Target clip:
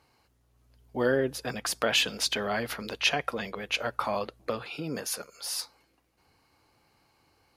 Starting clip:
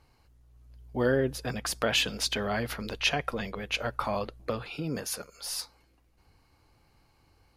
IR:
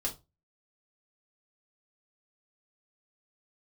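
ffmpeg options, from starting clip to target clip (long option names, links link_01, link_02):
-af "highpass=frequency=240:poles=1,volume=1.5dB"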